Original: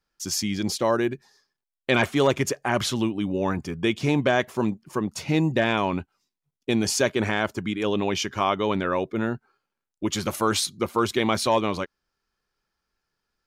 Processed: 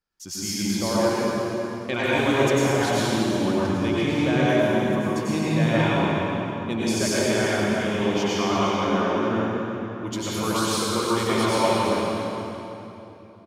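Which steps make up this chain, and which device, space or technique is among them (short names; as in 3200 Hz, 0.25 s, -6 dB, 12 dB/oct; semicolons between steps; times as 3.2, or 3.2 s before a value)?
cave (echo 0.351 s -12 dB; reverb RT60 3.2 s, pre-delay 88 ms, DRR -8.5 dB); gain -7.5 dB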